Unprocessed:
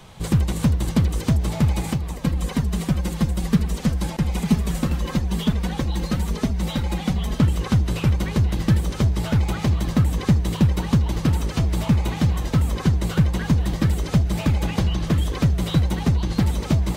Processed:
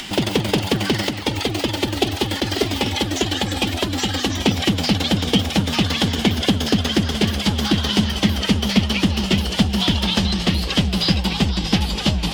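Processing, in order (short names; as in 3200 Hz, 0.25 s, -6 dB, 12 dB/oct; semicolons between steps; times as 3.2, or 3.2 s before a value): speed glide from 182% -> 93%; bell 2700 Hz +13 dB 1.8 oct; formant shift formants +4 st; thirty-one-band EQ 125 Hz -6 dB, 200 Hz +8 dB, 800 Hz +5 dB, 3150 Hz +8 dB, 5000 Hz +4 dB; upward compressor, threshold -24 dBFS; gain -1.5 dB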